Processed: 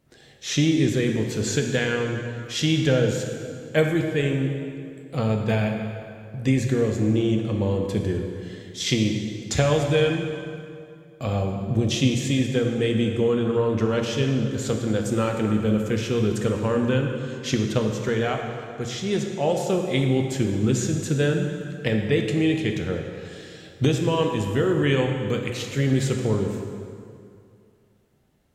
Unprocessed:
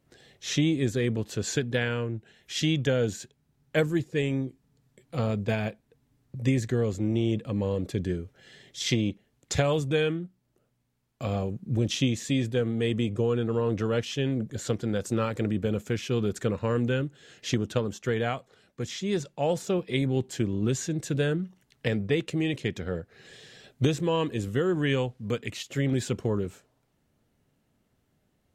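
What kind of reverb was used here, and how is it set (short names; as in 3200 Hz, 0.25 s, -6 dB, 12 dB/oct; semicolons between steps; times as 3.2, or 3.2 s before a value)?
plate-style reverb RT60 2.4 s, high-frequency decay 0.75×, DRR 2.5 dB; gain +3 dB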